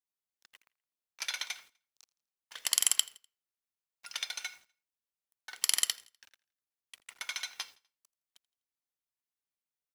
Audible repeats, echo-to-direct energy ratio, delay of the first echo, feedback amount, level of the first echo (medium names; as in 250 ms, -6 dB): 2, -23.0 dB, 83 ms, 44%, -24.0 dB